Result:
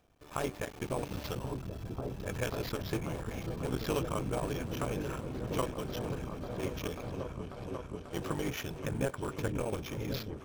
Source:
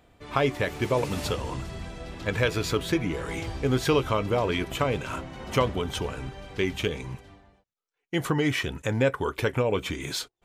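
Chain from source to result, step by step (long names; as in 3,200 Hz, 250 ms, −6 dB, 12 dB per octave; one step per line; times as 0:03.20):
sub-harmonics by changed cycles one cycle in 3, muted
notch filter 2,000 Hz, Q 8.8
decimation without filtering 5×
on a send: echo whose low-pass opens from repeat to repeat 540 ms, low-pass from 200 Hz, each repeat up 1 octave, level 0 dB
on the sum: level −9 dB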